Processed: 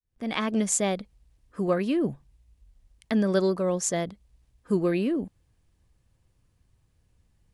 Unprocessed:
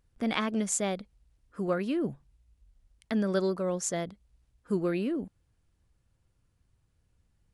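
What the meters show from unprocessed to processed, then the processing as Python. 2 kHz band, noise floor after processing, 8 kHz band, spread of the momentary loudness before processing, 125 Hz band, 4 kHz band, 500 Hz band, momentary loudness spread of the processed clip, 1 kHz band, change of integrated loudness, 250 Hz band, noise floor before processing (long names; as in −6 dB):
+2.5 dB, −69 dBFS, +4.5 dB, 8 LU, +4.5 dB, +3.0 dB, +4.5 dB, 8 LU, +3.0 dB, +4.0 dB, +4.0 dB, −73 dBFS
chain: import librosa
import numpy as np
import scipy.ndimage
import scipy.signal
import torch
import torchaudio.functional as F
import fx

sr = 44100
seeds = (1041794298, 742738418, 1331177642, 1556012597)

y = fx.fade_in_head(x, sr, length_s=0.55)
y = fx.notch(y, sr, hz=1400.0, q=11.0)
y = y * librosa.db_to_amplitude(4.5)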